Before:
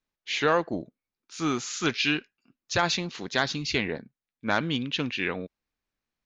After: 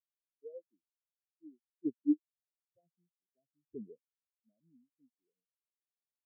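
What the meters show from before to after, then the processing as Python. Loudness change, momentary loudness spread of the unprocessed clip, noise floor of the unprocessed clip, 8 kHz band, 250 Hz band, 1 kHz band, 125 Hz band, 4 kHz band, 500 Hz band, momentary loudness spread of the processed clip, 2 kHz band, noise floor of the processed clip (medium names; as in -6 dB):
-9.0 dB, 12 LU, under -85 dBFS, no reading, -8.0 dB, under -40 dB, under -30 dB, under -40 dB, -21.0 dB, 20 LU, under -40 dB, under -85 dBFS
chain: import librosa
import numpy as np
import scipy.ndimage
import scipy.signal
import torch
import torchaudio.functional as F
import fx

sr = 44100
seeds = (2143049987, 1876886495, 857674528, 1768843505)

y = fx.chopper(x, sr, hz=0.54, depth_pct=60, duty_pct=15)
y = scipy.signal.sosfilt(scipy.signal.cheby2(4, 50, [1400.0, 5000.0], 'bandstop', fs=sr, output='sos'), y)
y = fx.spectral_expand(y, sr, expansion=4.0)
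y = y * 10.0 ** (-1.5 / 20.0)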